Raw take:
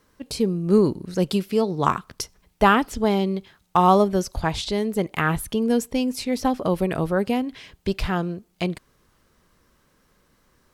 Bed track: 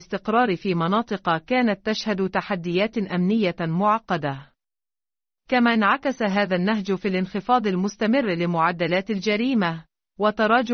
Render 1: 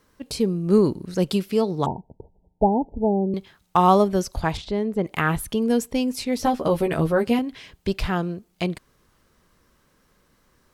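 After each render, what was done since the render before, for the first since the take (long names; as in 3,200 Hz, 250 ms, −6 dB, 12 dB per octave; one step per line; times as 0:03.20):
0:01.86–0:03.34: Chebyshev low-pass filter 930 Hz, order 10
0:04.57–0:05.05: low-pass filter 1,300 Hz 6 dB per octave
0:06.38–0:07.39: double-tracking delay 13 ms −3.5 dB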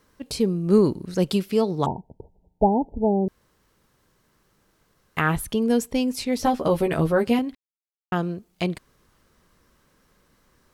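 0:03.28–0:05.17: fill with room tone
0:07.55–0:08.12: silence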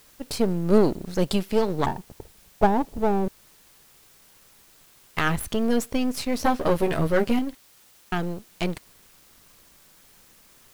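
gain on one half-wave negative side −12 dB
in parallel at −7.5 dB: bit-depth reduction 8 bits, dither triangular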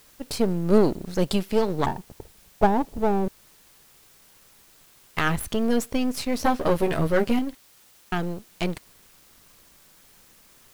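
no processing that can be heard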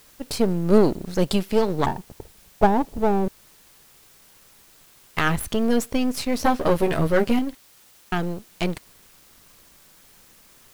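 level +2 dB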